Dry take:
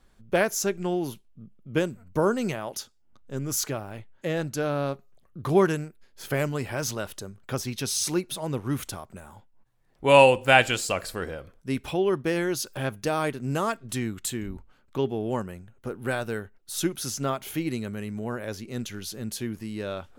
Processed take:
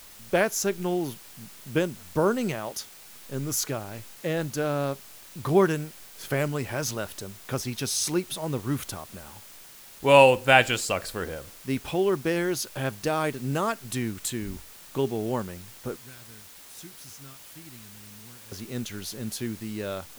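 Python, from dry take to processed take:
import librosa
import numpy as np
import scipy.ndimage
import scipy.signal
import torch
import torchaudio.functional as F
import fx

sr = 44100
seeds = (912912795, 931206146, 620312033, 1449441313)

y = fx.tone_stack(x, sr, knobs='6-0-2', at=(15.96, 18.52))
y = fx.quant_dither(y, sr, seeds[0], bits=8, dither='triangular')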